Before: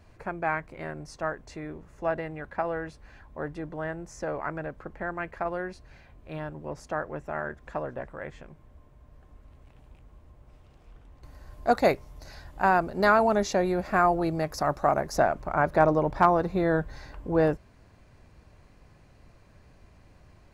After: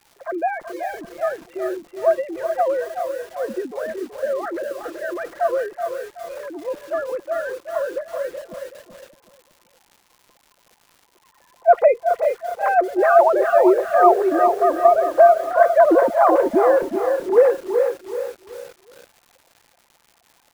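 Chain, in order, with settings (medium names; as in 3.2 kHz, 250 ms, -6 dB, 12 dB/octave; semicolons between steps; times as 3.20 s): formants replaced by sine waves; tilt EQ -4 dB/octave; comb 5.8 ms, depth 35%; on a send: feedback delay 376 ms, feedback 33%, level -8.5 dB; on the sum: crackle 300 per s -45 dBFS; bit-crushed delay 407 ms, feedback 35%, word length 7-bit, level -7.5 dB; trim +4.5 dB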